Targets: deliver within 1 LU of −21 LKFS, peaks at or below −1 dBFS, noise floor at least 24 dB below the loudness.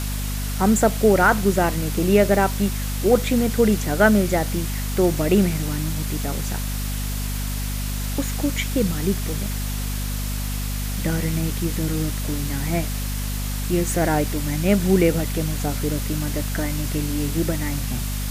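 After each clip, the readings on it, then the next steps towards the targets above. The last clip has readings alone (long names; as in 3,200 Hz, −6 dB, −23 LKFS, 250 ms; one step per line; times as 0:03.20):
mains hum 50 Hz; hum harmonics up to 250 Hz; level of the hum −24 dBFS; background noise floor −26 dBFS; target noise floor −47 dBFS; integrated loudness −22.5 LKFS; sample peak −3.5 dBFS; target loudness −21.0 LKFS
→ mains-hum notches 50/100/150/200/250 Hz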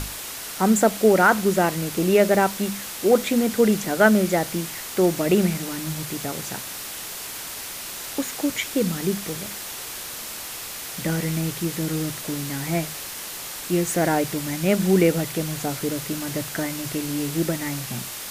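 mains hum none found; background noise floor −34 dBFS; target noise floor −48 dBFS
→ noise reduction from a noise print 14 dB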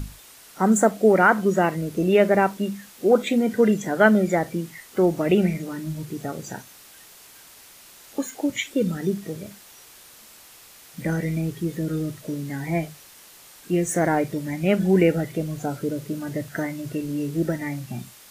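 background noise floor −48 dBFS; integrated loudness −23.0 LKFS; sample peak −4.5 dBFS; target loudness −21.0 LKFS
→ level +2 dB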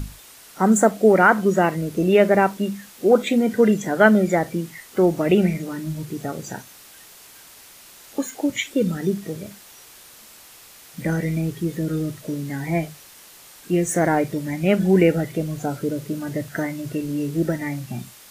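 integrated loudness −21.0 LKFS; sample peak −2.5 dBFS; background noise floor −46 dBFS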